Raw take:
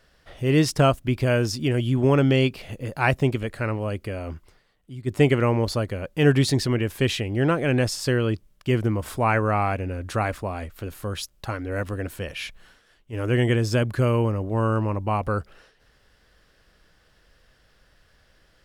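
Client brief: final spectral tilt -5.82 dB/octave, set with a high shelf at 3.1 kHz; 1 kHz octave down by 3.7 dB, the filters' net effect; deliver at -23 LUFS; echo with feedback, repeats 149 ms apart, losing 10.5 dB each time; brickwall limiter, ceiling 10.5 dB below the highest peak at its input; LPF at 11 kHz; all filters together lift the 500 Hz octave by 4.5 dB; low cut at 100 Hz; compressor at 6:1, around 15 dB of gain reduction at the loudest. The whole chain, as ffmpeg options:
-af "highpass=100,lowpass=11000,equalizer=f=500:t=o:g=7.5,equalizer=f=1000:t=o:g=-8,highshelf=f=3100:g=-4.5,acompressor=threshold=0.0501:ratio=6,alimiter=level_in=1.06:limit=0.0631:level=0:latency=1,volume=0.944,aecho=1:1:149|298|447:0.299|0.0896|0.0269,volume=4.22"

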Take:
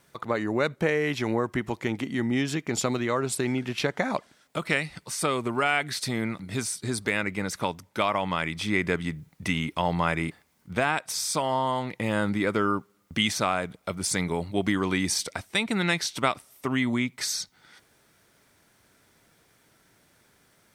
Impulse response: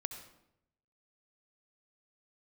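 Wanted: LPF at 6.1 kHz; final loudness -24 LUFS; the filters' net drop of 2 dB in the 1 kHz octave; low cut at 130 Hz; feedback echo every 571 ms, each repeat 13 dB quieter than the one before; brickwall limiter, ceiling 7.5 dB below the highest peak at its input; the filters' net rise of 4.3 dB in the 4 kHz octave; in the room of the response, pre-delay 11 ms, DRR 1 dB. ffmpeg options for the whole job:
-filter_complex "[0:a]highpass=130,lowpass=6100,equalizer=f=1000:t=o:g=-3,equalizer=f=4000:t=o:g=6.5,alimiter=limit=0.188:level=0:latency=1,aecho=1:1:571|1142|1713:0.224|0.0493|0.0108,asplit=2[s0][s1];[1:a]atrim=start_sample=2205,adelay=11[s2];[s1][s2]afir=irnorm=-1:irlink=0,volume=0.944[s3];[s0][s3]amix=inputs=2:normalize=0,volume=1.26"

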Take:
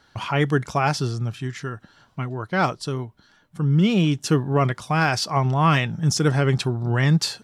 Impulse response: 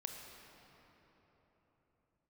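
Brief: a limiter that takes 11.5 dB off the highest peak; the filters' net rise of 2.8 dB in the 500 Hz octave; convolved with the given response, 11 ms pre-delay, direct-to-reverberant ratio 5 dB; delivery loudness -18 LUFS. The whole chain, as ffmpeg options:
-filter_complex "[0:a]equalizer=f=500:t=o:g=3.5,alimiter=limit=0.15:level=0:latency=1,asplit=2[s0][s1];[1:a]atrim=start_sample=2205,adelay=11[s2];[s1][s2]afir=irnorm=-1:irlink=0,volume=0.708[s3];[s0][s3]amix=inputs=2:normalize=0,volume=2.51"

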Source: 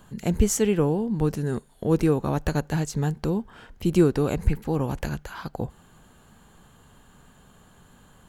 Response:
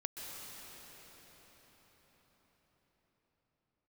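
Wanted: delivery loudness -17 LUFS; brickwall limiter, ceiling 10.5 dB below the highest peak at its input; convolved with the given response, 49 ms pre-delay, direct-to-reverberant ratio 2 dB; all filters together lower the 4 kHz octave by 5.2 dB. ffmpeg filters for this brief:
-filter_complex "[0:a]equalizer=f=4000:t=o:g=-7.5,alimiter=limit=0.126:level=0:latency=1,asplit=2[s0][s1];[1:a]atrim=start_sample=2205,adelay=49[s2];[s1][s2]afir=irnorm=-1:irlink=0,volume=0.75[s3];[s0][s3]amix=inputs=2:normalize=0,volume=3.35"

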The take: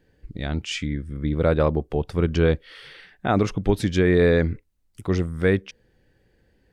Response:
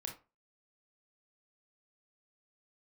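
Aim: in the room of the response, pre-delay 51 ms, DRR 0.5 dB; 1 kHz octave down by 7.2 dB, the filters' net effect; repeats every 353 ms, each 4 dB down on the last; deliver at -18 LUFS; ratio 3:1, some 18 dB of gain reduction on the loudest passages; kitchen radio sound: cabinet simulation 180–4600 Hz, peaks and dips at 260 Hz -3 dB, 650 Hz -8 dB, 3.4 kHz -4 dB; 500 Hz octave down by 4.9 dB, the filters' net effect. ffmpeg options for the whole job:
-filter_complex "[0:a]equalizer=f=500:t=o:g=-3,equalizer=f=1000:t=o:g=-6.5,acompressor=threshold=0.00891:ratio=3,aecho=1:1:353|706|1059|1412|1765|2118|2471|2824|3177:0.631|0.398|0.25|0.158|0.0994|0.0626|0.0394|0.0249|0.0157,asplit=2[s0][s1];[1:a]atrim=start_sample=2205,adelay=51[s2];[s1][s2]afir=irnorm=-1:irlink=0,volume=1.19[s3];[s0][s3]amix=inputs=2:normalize=0,highpass=180,equalizer=f=260:t=q:w=4:g=-3,equalizer=f=650:t=q:w=4:g=-8,equalizer=f=3400:t=q:w=4:g=-4,lowpass=f=4600:w=0.5412,lowpass=f=4600:w=1.3066,volume=12.6"

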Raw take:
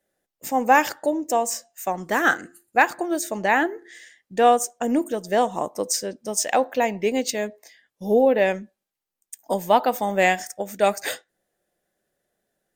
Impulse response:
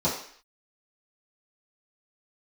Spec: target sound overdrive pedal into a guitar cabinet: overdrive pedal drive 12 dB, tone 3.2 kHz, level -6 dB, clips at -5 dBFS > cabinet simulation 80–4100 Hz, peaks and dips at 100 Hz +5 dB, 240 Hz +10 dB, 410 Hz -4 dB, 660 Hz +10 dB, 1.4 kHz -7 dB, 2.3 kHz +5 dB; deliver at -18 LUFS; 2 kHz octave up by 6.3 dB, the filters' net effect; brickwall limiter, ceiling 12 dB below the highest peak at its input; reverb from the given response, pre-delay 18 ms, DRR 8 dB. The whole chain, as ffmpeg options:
-filter_complex "[0:a]equalizer=f=2000:t=o:g=8,alimiter=limit=0.299:level=0:latency=1,asplit=2[s0][s1];[1:a]atrim=start_sample=2205,adelay=18[s2];[s1][s2]afir=irnorm=-1:irlink=0,volume=0.1[s3];[s0][s3]amix=inputs=2:normalize=0,asplit=2[s4][s5];[s5]highpass=f=720:p=1,volume=3.98,asoftclip=type=tanh:threshold=0.562[s6];[s4][s6]amix=inputs=2:normalize=0,lowpass=f=3200:p=1,volume=0.501,highpass=80,equalizer=f=100:t=q:w=4:g=5,equalizer=f=240:t=q:w=4:g=10,equalizer=f=410:t=q:w=4:g=-4,equalizer=f=660:t=q:w=4:g=10,equalizer=f=1400:t=q:w=4:g=-7,equalizer=f=2300:t=q:w=4:g=5,lowpass=f=4100:w=0.5412,lowpass=f=4100:w=1.3066,volume=0.841"

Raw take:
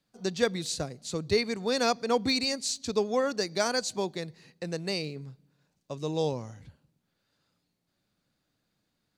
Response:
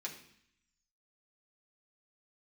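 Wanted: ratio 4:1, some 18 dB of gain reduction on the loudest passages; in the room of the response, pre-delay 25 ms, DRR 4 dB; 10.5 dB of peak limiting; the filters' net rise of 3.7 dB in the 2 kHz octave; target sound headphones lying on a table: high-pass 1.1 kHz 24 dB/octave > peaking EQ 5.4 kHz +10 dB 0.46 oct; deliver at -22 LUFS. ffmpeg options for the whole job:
-filter_complex "[0:a]equalizer=f=2000:t=o:g=4.5,acompressor=threshold=0.00794:ratio=4,alimiter=level_in=4.47:limit=0.0631:level=0:latency=1,volume=0.224,asplit=2[s0][s1];[1:a]atrim=start_sample=2205,adelay=25[s2];[s1][s2]afir=irnorm=-1:irlink=0,volume=0.668[s3];[s0][s3]amix=inputs=2:normalize=0,highpass=f=1100:w=0.5412,highpass=f=1100:w=1.3066,equalizer=f=5400:t=o:w=0.46:g=10,volume=14.1"

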